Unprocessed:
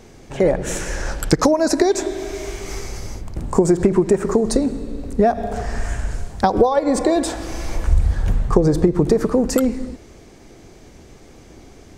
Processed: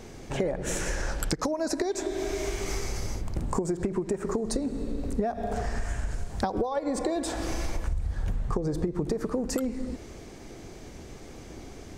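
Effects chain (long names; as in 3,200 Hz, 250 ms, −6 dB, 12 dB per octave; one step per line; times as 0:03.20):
downward compressor 6 to 1, threshold −26 dBFS, peak gain reduction 16.5 dB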